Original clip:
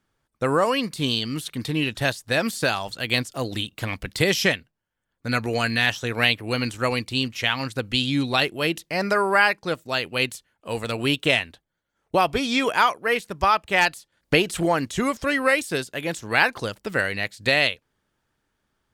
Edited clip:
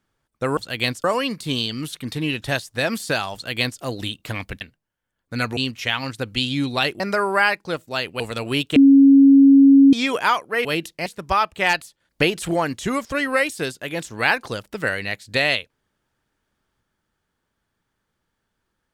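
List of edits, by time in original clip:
2.87–3.34 s: copy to 0.57 s
4.14–4.54 s: delete
5.50–7.14 s: delete
8.57–8.98 s: move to 13.18 s
10.18–10.73 s: delete
11.29–12.46 s: bleep 275 Hz -7 dBFS

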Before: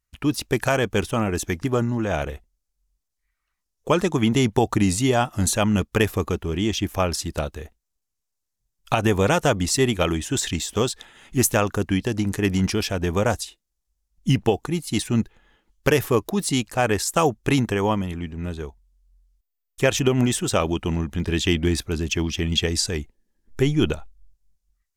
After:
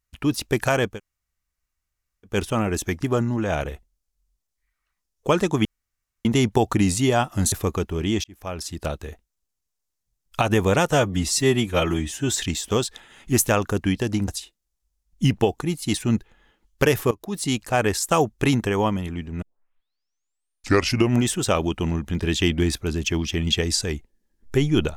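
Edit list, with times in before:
0.92 s: insert room tone 1.39 s, crossfade 0.16 s
4.26 s: insert room tone 0.60 s
5.53–6.05 s: delete
6.77–7.53 s: fade in
9.44–10.40 s: stretch 1.5×
12.33–13.33 s: delete
16.16–16.64 s: fade in, from -17.5 dB
18.47 s: tape start 1.79 s

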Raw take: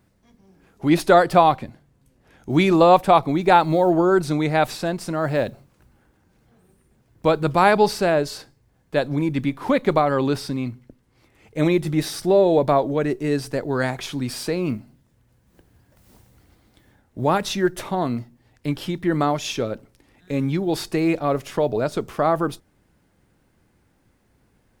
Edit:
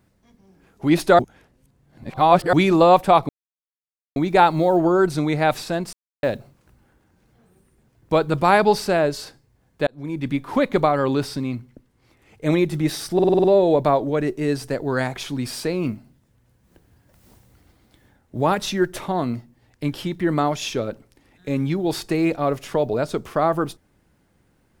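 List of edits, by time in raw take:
1.19–2.53 s: reverse
3.29 s: insert silence 0.87 s
5.06–5.36 s: mute
9.00–9.49 s: fade in
12.27 s: stutter 0.05 s, 7 plays

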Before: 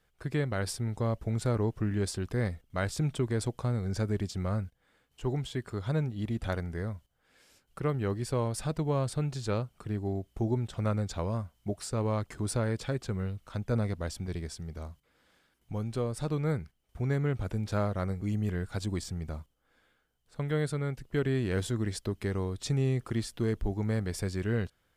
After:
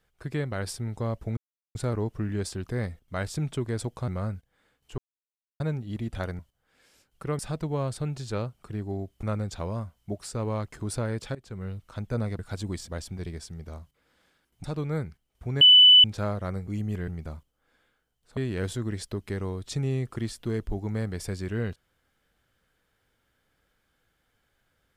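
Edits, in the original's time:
1.37 s: insert silence 0.38 s
3.70–4.37 s: delete
5.27–5.89 s: mute
6.68–6.95 s: delete
7.95–8.55 s: delete
10.39–10.81 s: delete
12.93–13.32 s: fade in, from -18 dB
15.73–16.18 s: delete
17.15–17.58 s: bleep 2.99 kHz -10.5 dBFS
18.62–19.11 s: move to 13.97 s
20.40–21.31 s: delete

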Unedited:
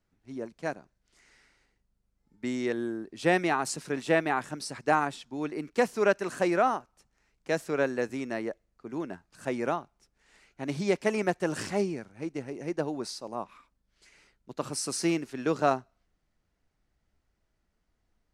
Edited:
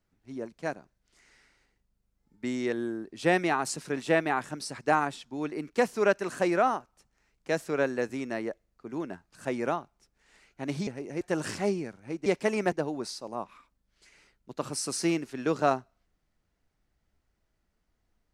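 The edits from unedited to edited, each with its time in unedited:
10.87–11.33 s: swap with 12.38–12.72 s

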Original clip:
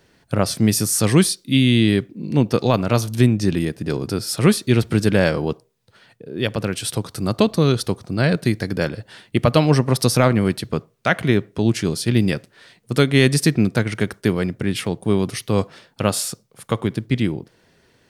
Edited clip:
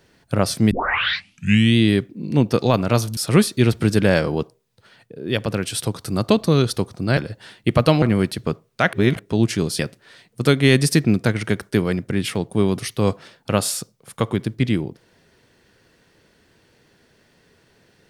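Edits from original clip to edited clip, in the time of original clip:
0.71 s: tape start 1.05 s
3.17–4.27 s: delete
8.27–8.85 s: delete
9.70–10.28 s: delete
11.19–11.45 s: reverse
12.05–12.30 s: delete

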